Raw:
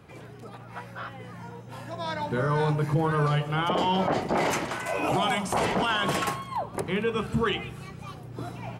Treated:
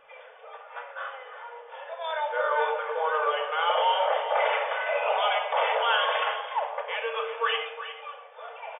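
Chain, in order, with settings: FFT band-pass 440–3600 Hz; delay 360 ms -12 dB; simulated room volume 2400 m³, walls furnished, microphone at 2.5 m

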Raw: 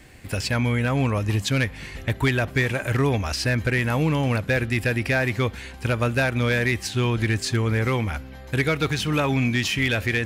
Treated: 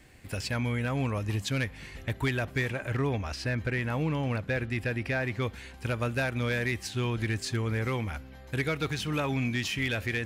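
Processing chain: 2.70–5.42 s: treble shelf 5.9 kHz -10 dB; trim -7.5 dB

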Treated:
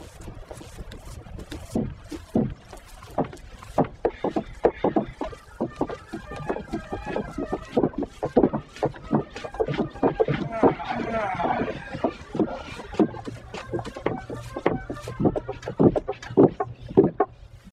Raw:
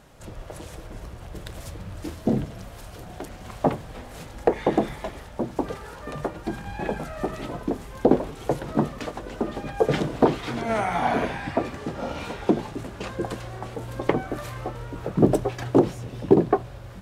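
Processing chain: tempo 0.96×; reverse echo 600 ms -3.5 dB; reverb removal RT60 1.6 s; low-pass that closes with the level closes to 2.6 kHz, closed at -19 dBFS

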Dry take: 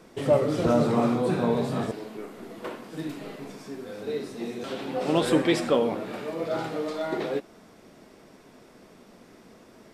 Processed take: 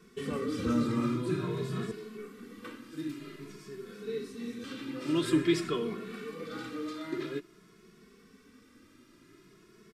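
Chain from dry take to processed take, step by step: high-order bell 690 Hz -16 dB 1 oct; endless flanger 2.3 ms +0.5 Hz; trim -2 dB

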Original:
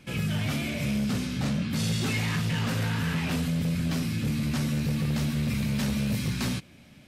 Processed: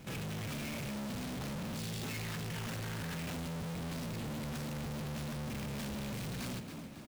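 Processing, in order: square wave that keeps the level; frequency-shifting echo 275 ms, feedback 40%, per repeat +40 Hz, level -16.5 dB; saturation -35.5 dBFS, distortion -10 dB; trim -3.5 dB

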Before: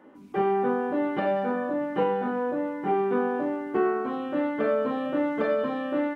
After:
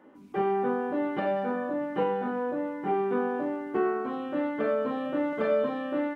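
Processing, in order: 5.29–5.69 s: doubling 36 ms -6 dB; trim -2.5 dB

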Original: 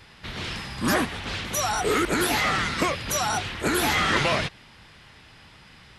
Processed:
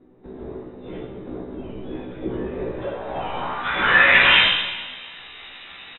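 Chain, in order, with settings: frequency inversion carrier 3.8 kHz; doubling 16 ms -2.5 dB; Schroeder reverb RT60 1.3 s, combs from 32 ms, DRR 3 dB; low-pass sweep 360 Hz -> 2.9 kHz, 2.50–4.53 s; trim +2.5 dB

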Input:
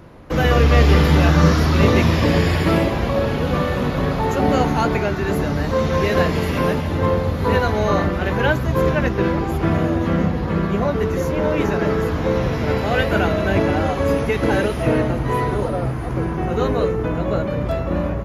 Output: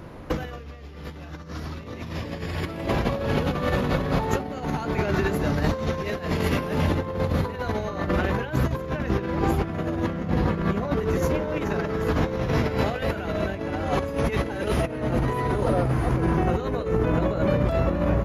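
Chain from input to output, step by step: compressor with a negative ratio -22 dBFS, ratio -0.5; trim -2.5 dB

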